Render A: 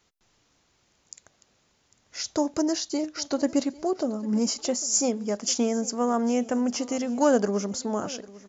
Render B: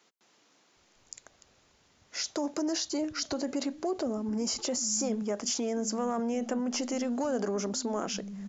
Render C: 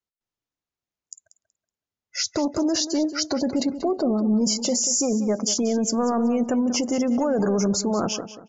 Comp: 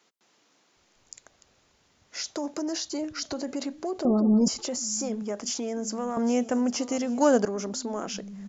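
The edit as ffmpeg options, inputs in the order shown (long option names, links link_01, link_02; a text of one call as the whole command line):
ffmpeg -i take0.wav -i take1.wav -i take2.wav -filter_complex "[1:a]asplit=3[link_01][link_02][link_03];[link_01]atrim=end=4.052[link_04];[2:a]atrim=start=4.048:end=4.482[link_05];[link_02]atrim=start=4.478:end=6.172[link_06];[0:a]atrim=start=6.168:end=7.452[link_07];[link_03]atrim=start=7.448[link_08];[link_04][link_05]acrossfade=duration=0.004:curve1=hsin:curve2=hsin[link_09];[link_09][link_06]acrossfade=duration=0.004:curve1=hsin:curve2=hsin[link_10];[link_10][link_07]acrossfade=duration=0.004:curve1=hsin:curve2=hsin[link_11];[link_11][link_08]acrossfade=duration=0.004:curve1=hsin:curve2=hsin" out.wav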